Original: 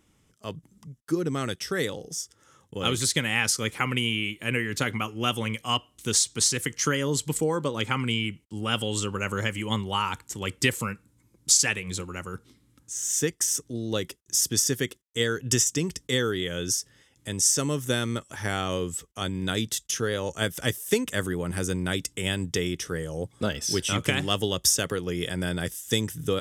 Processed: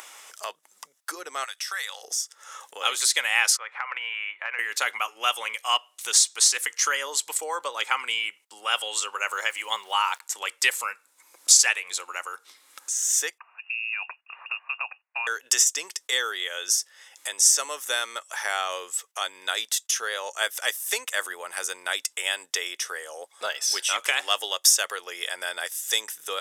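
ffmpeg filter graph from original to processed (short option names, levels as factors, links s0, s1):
-filter_complex "[0:a]asettb=1/sr,asplit=3[s0][s1][s2];[s0]atrim=end=1.444[s3];[s1]atrim=start=1.44:end=2.03,asetpts=PTS-STARTPTS,afade=t=in:d=0.004:c=qsin,afade=t=out:st=0.586:d=0.004:c=qsin,highpass=1100,acompressor=threshold=0.01:ratio=2:attack=3.2:release=140:knee=1:detection=peak[s4];[s2]atrim=start=2.026[s5];[s3][s4]acrossfade=d=0.004:c1=hsin:c2=qsin[s6];[s6][s5]acrossfade=d=0.004:c1=qsin:c2=hsin,asettb=1/sr,asplit=3[s7][s8][s9];[s7]atrim=end=3.574[s10];[s8]atrim=start=3.57:end=4.59,asetpts=PTS-STARTPTS,afade=t=in:d=0.004:c=qsin,afade=t=out:st=1.016:d=0.004:c=qsin,lowpass=3600,acrossover=split=590 2200:gain=0.0794 1 0.0794[s11][s12][s13];[s11][s12][s13]amix=inputs=3:normalize=0,acompressor=threshold=0.02:ratio=4:attack=3.2:release=140:knee=1:detection=peak[s14];[s9]atrim=start=4.586[s15];[s10][s14]acrossfade=d=0.004:c1=hsin:c2=qsin[s16];[s16][s15]acrossfade=d=0.004:c1=qsin:c2=hsin,asettb=1/sr,asplit=3[s17][s18][s19];[s17]atrim=end=9.304[s20];[s18]atrim=start=9.3:end=10.21,asetpts=PTS-STARTPTS,afade=t=in:d=0.004:c=qsin,afade=t=out:st=0.906:d=0.004:c=qsin,equalizer=f=100:t=o:w=0.77:g=-4,aeval=exprs='val(0)*gte(abs(val(0)),0.00335)':c=same[s21];[s19]atrim=start=10.206[s22];[s20][s21]acrossfade=d=0.004:c1=hsin:c2=qsin[s23];[s23][s22]acrossfade=d=0.004:c1=qsin:c2=hsin,asettb=1/sr,asplit=3[s24][s25][s26];[s24]atrim=end=13.384[s27];[s25]atrim=start=13.38:end=15.27,asetpts=PTS-STARTPTS,afade=t=in:d=0.004:c=qsin,afade=t=out:st=1.886:d=0.004:c=qsin,lowshelf=f=190:g=-9,acompressor=threshold=0.0141:ratio=2.5:attack=3.2:release=140:knee=1:detection=peak,lowpass=f=2500:t=q:w=0.5098,lowpass=f=2500:t=q:w=0.6013,lowpass=f=2500:t=q:w=0.9,lowpass=f=2500:t=q:w=2.563,afreqshift=-2900[s28];[s26]atrim=start=15.266[s29];[s27][s28]acrossfade=d=0.004:c1=hsin:c2=qsin[s30];[s30][s29]acrossfade=d=0.004:c1=qsin:c2=hsin,bandreject=f=3100:w=21,acompressor=mode=upward:threshold=0.0447:ratio=2.5,highpass=f=680:w=0.5412,highpass=f=680:w=1.3066,volume=1.58"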